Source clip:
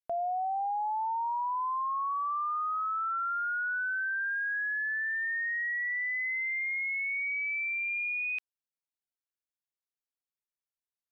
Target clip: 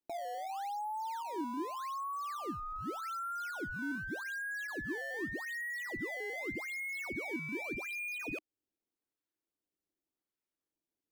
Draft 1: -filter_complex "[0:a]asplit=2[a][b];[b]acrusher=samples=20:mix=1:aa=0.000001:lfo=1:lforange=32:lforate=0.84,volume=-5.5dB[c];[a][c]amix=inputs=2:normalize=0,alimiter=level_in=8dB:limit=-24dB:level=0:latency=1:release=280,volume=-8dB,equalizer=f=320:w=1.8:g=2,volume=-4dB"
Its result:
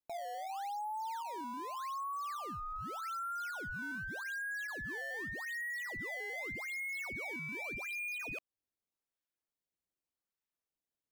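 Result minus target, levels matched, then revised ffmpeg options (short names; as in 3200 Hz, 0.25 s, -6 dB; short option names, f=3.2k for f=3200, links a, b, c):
250 Hz band -7.5 dB
-filter_complex "[0:a]asplit=2[a][b];[b]acrusher=samples=20:mix=1:aa=0.000001:lfo=1:lforange=32:lforate=0.84,volume=-5.5dB[c];[a][c]amix=inputs=2:normalize=0,alimiter=level_in=8dB:limit=-24dB:level=0:latency=1:release=280,volume=-8dB,equalizer=f=320:w=1.8:g=14,volume=-4dB"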